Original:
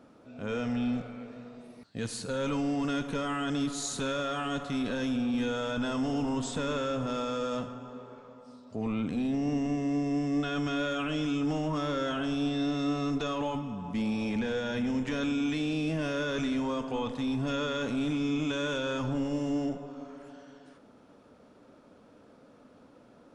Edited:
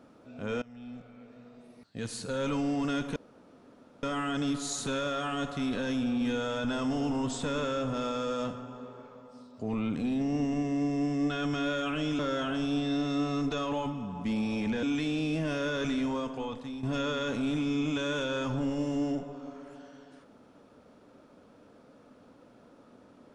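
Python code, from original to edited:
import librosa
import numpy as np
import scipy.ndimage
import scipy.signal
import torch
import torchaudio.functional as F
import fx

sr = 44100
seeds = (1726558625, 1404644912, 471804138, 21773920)

y = fx.edit(x, sr, fx.fade_in_from(start_s=0.62, length_s=1.8, floor_db=-23.5),
    fx.insert_room_tone(at_s=3.16, length_s=0.87),
    fx.cut(start_s=11.32, length_s=0.56),
    fx.cut(start_s=14.52, length_s=0.85),
    fx.fade_out_to(start_s=16.61, length_s=0.76, floor_db=-10.5), tone=tone)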